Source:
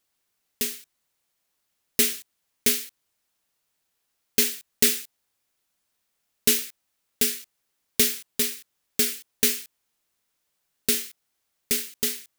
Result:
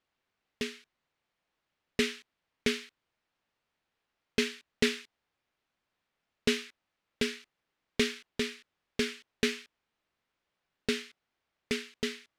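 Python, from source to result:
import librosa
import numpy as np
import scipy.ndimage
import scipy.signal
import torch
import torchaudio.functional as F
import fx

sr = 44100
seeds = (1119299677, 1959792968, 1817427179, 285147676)

y = scipy.signal.sosfilt(scipy.signal.butter(2, 2900.0, 'lowpass', fs=sr, output='sos'), x)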